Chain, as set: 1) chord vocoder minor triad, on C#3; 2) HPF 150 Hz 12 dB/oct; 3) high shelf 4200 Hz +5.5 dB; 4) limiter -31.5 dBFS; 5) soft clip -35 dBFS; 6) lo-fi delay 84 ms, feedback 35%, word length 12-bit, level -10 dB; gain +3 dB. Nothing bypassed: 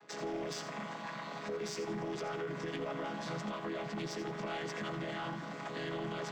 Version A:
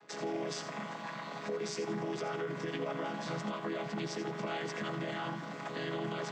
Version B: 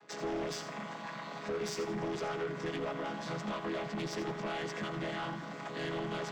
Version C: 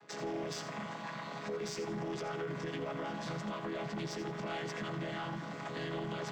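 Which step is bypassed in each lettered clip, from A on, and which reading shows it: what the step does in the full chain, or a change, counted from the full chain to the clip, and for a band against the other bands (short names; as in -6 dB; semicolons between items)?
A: 5, distortion -18 dB; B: 4, mean gain reduction 2.5 dB; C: 2, 125 Hz band +2.5 dB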